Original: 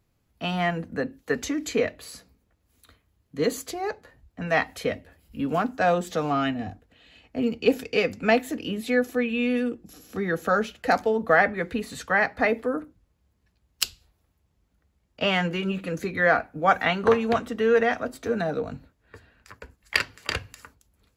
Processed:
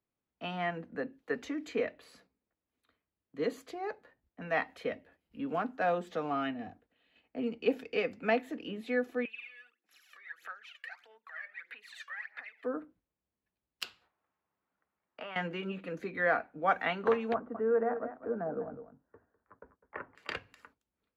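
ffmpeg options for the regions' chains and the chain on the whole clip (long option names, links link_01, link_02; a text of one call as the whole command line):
ffmpeg -i in.wav -filter_complex "[0:a]asettb=1/sr,asplit=3[link_01][link_02][link_03];[link_01]atrim=end=9.254[link_04];[link_02]atrim=start=9.25:end=12.64,asetpts=PTS-STARTPTS,afade=type=in:duration=0.004:curve=qsin,afade=type=out:start_time=3.386:duration=0.004:curve=qsin,acompressor=threshold=-35dB:ratio=8:attack=3.2:release=140:knee=1:detection=peak,highpass=frequency=1900:width_type=q:width=1.8,aphaser=in_gain=1:out_gain=1:delay=1.8:decay=0.74:speed=1.6:type=sinusoidal[link_05];[link_03]atrim=start=12.636[link_06];[link_04][link_05]acrossfade=duration=0.004:curve1=hsin:curve2=qsin[link_07];[link_07][link_06]acrossfade=duration=0.004:curve1=qsin:curve2=hsin,asettb=1/sr,asplit=3[link_08][link_09][link_10];[link_08]atrim=end=13.844[link_11];[link_09]atrim=start=13.84:end=15.36,asetpts=PTS-STARTPTS,afade=type=in:duration=0.004:curve=qsin,afade=type=out:start_time=1.516:duration=0.004:curve=qsin,highpass=84,equalizer=frequency=1200:width=0.62:gain=13.5,acompressor=threshold=-31dB:ratio=10:attack=3.2:release=140:knee=1:detection=peak[link_12];[link_10]atrim=start=15.356[link_13];[link_11][link_12]acrossfade=duration=0.004:curve1=hsin:curve2=qsin[link_14];[link_14][link_13]acrossfade=duration=0.004:curve1=qsin:curve2=hsin,asettb=1/sr,asplit=3[link_15][link_16][link_17];[link_15]atrim=end=17.344[link_18];[link_16]atrim=start=17.34:end=20.15,asetpts=PTS-STARTPTS,afade=type=in:duration=0.004:curve=qsin,afade=type=out:start_time=2.806:duration=0.004:curve=qsin,lowpass=frequency=1300:width=0.5412,lowpass=frequency=1300:width=1.3066,aecho=1:1:203:0.282,atrim=end_sample=123921[link_19];[link_17]atrim=start=20.146[link_20];[link_18][link_19]acrossfade=duration=0.004:curve1=hsin:curve2=qsin[link_21];[link_21][link_20]acrossfade=duration=0.004:curve1=qsin:curve2=hsin,agate=range=-7dB:threshold=-52dB:ratio=16:detection=peak,acrossover=split=180 3600:gain=0.2 1 0.178[link_22][link_23][link_24];[link_22][link_23][link_24]amix=inputs=3:normalize=0,volume=-8dB" out.wav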